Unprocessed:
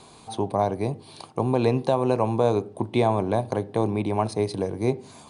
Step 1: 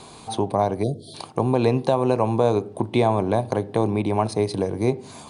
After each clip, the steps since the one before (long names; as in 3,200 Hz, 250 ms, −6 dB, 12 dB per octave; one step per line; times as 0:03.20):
time-frequency box erased 0:00.83–0:01.14, 720–3,100 Hz
in parallel at −0.5 dB: downward compressor, threshold −29 dBFS, peak gain reduction 13 dB
on the sum: every ending faded ahead of time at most 330 dB per second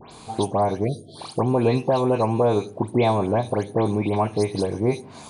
all-pass dispersion highs, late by 124 ms, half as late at 2,900 Hz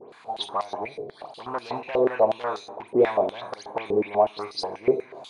gain into a clipping stage and back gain 14 dB
comb and all-pass reverb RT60 1 s, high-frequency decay 0.75×, pre-delay 5 ms, DRR 10 dB
band-pass on a step sequencer 8.2 Hz 450–4,800 Hz
level +8 dB